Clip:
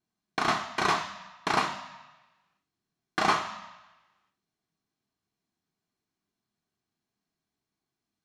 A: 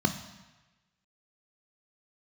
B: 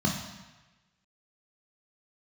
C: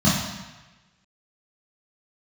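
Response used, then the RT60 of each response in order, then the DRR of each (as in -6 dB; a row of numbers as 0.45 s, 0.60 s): A; 1.1 s, 1.1 s, 1.1 s; 7.0 dB, -0.5 dB, -8.5 dB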